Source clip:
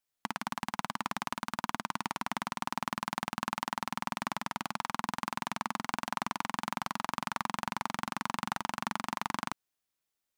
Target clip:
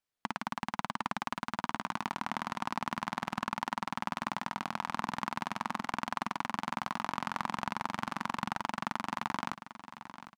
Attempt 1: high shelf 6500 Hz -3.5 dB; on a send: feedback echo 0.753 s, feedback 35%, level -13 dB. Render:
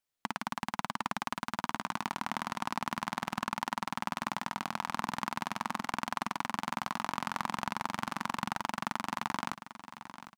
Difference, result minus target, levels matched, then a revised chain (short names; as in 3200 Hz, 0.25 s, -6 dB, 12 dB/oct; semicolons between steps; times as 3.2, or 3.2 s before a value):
8000 Hz band +4.0 dB
high shelf 6500 Hz -11.5 dB; on a send: feedback echo 0.753 s, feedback 35%, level -13 dB